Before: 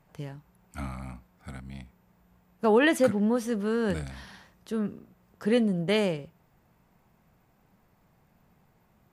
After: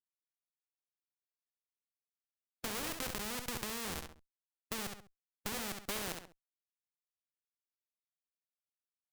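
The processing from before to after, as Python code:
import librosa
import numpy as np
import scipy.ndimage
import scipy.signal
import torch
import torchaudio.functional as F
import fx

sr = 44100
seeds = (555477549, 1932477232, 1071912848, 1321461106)

p1 = fx.rider(x, sr, range_db=4, speed_s=0.5)
p2 = fx.schmitt(p1, sr, flips_db=-25.5)
p3 = fx.transient(p2, sr, attack_db=4, sustain_db=8)
p4 = p3 + fx.echo_feedback(p3, sr, ms=67, feedback_pct=20, wet_db=-10, dry=0)
y = fx.spectral_comp(p4, sr, ratio=2.0)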